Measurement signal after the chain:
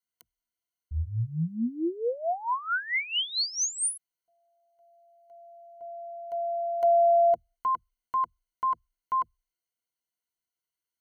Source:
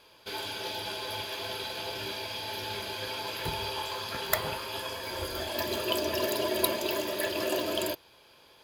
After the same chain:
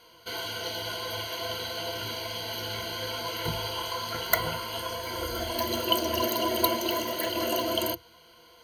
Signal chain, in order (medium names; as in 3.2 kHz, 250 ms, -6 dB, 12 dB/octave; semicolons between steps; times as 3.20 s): rippled EQ curve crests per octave 1.9, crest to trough 17 dB